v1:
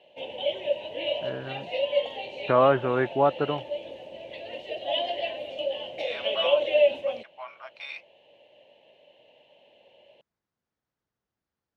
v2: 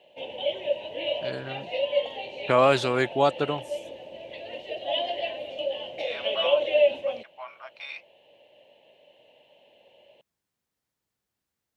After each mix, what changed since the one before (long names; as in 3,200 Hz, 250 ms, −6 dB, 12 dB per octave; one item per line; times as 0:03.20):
first voice: remove inverse Chebyshev low-pass filter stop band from 3,500 Hz, stop band 40 dB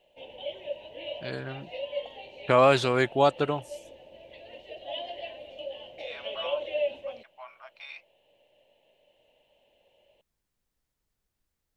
second voice −5.0 dB
background −8.5 dB
master: remove high-pass filter 110 Hz 12 dB per octave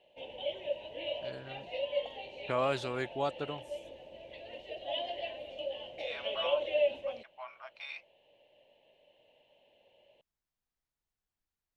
first voice −11.5 dB